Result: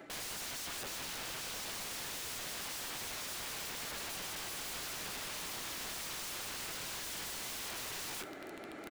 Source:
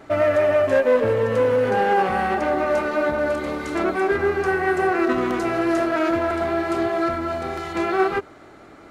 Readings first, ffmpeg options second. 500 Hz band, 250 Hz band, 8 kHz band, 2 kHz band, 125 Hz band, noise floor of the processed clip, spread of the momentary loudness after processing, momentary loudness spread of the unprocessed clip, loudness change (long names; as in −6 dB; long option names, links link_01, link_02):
−32.0 dB, −28.5 dB, can't be measured, −18.0 dB, −22.0 dB, −47 dBFS, 0 LU, 6 LU, −18.5 dB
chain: -filter_complex "[0:a]equalizer=frequency=1100:width_type=o:width=0.75:gain=-8.5,crystalizer=i=4.5:c=0,areverse,acompressor=threshold=-27dB:ratio=20,areverse,acrossover=split=160 2800:gain=0.178 1 0.158[link_01][link_02][link_03];[link_01][link_02][link_03]amix=inputs=3:normalize=0,flanger=delay=5.9:depth=8.6:regen=-50:speed=0.27:shape=sinusoidal,aeval=exprs='(mod(112*val(0)+1,2)-1)/112':channel_layout=same,asplit=2[link_04][link_05];[link_05]aecho=0:1:74|148|222|296:0.126|0.0567|0.0255|0.0115[link_06];[link_04][link_06]amix=inputs=2:normalize=0,volume=3.5dB"